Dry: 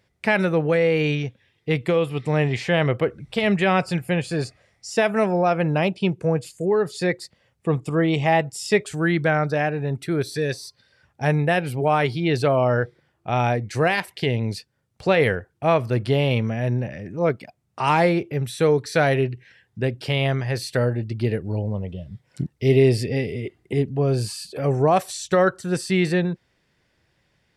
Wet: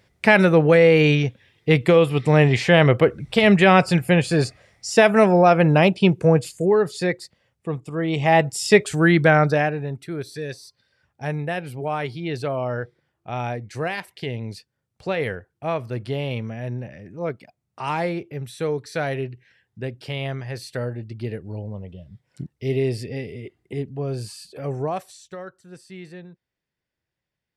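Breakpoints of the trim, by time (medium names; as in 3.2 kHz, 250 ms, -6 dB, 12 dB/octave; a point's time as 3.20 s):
6.39 s +5.5 dB
7.90 s -7 dB
8.45 s +5 dB
9.47 s +5 dB
10.03 s -6.5 dB
24.80 s -6.5 dB
25.43 s -19 dB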